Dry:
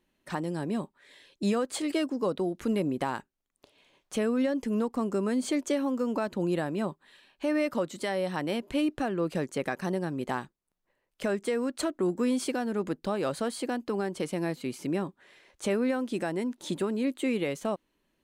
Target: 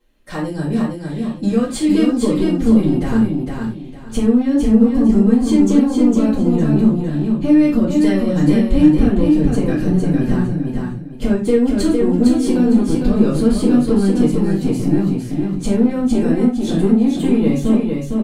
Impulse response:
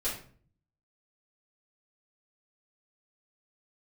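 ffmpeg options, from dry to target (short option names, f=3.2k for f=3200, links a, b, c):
-filter_complex "[0:a]asubboost=boost=11:cutoff=220,acompressor=threshold=-19dB:ratio=6,asoftclip=type=tanh:threshold=-16.5dB,aecho=1:1:457|914|1371|1828:0.631|0.17|0.046|0.0124[a];[1:a]atrim=start_sample=2205,afade=t=out:st=0.16:d=0.01,atrim=end_sample=7497[b];[a][b]afir=irnorm=-1:irlink=0,volume=4dB"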